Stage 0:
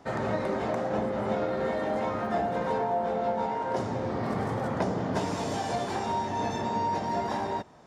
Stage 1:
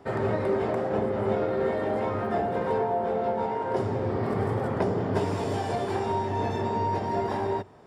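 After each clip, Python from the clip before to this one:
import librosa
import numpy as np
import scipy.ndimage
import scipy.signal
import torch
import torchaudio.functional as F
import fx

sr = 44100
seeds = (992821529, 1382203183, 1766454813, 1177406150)

y = fx.graphic_eq_31(x, sr, hz=(100, 400, 4000, 6300), db=(10, 9, -4, -10))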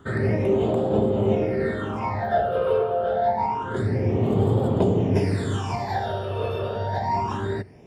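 y = fx.phaser_stages(x, sr, stages=8, low_hz=250.0, high_hz=1800.0, hz=0.27, feedback_pct=45)
y = y * 10.0 ** (6.0 / 20.0)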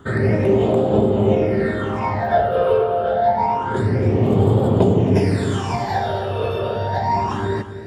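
y = x + 10.0 ** (-11.5 / 20.0) * np.pad(x, (int(261 * sr / 1000.0), 0))[:len(x)]
y = y * 10.0 ** (5.0 / 20.0)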